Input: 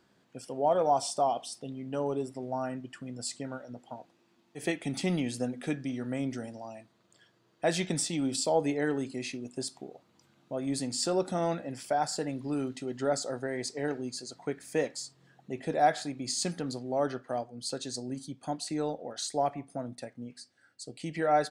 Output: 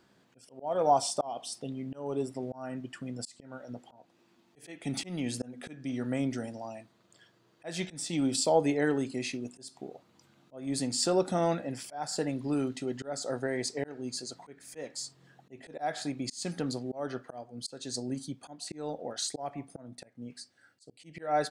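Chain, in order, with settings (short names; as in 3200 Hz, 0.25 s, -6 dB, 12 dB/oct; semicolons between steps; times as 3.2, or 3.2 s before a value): auto swell 0.292 s; gain +2 dB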